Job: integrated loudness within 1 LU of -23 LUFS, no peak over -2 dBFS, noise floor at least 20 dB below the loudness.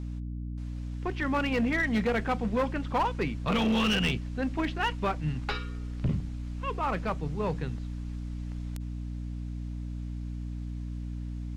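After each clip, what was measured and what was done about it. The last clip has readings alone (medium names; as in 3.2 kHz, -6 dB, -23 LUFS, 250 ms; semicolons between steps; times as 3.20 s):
clipped samples 1.6%; clipping level -21.5 dBFS; hum 60 Hz; highest harmonic 300 Hz; hum level -33 dBFS; loudness -31.5 LUFS; peak level -21.5 dBFS; loudness target -23.0 LUFS
-> clip repair -21.5 dBFS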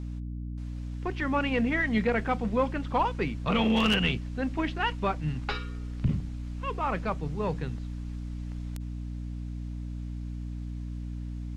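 clipped samples 0.0%; hum 60 Hz; highest harmonic 300 Hz; hum level -33 dBFS
-> hum notches 60/120/180/240/300 Hz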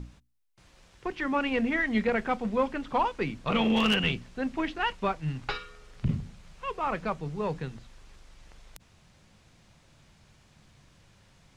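hum not found; loudness -29.5 LUFS; peak level -12.5 dBFS; loudness target -23.0 LUFS
-> trim +6.5 dB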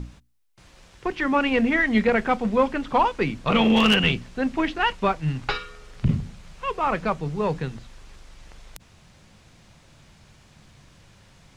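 loudness -23.0 LUFS; peak level -6.0 dBFS; noise floor -54 dBFS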